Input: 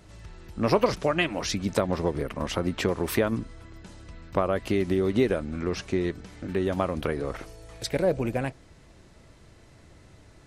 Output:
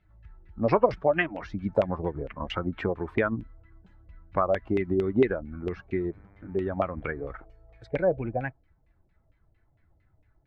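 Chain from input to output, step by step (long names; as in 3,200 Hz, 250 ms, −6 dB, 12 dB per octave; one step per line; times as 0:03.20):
spectral dynamics exaggerated over time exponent 1.5
auto-filter low-pass saw down 4.4 Hz 540–2,700 Hz
0:06.10–0:07.31: hum with harmonics 100 Hz, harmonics 24, −59 dBFS −5 dB per octave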